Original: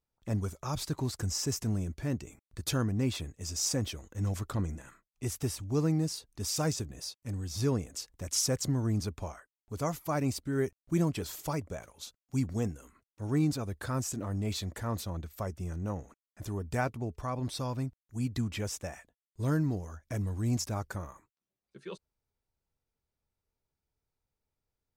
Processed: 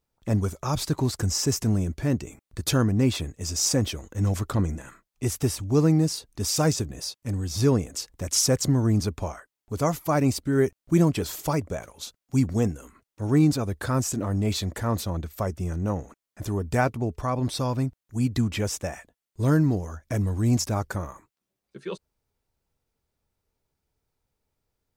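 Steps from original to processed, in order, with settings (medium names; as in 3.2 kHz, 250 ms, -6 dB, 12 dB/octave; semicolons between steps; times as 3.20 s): peaking EQ 370 Hz +2 dB 2.7 oct; trim +7 dB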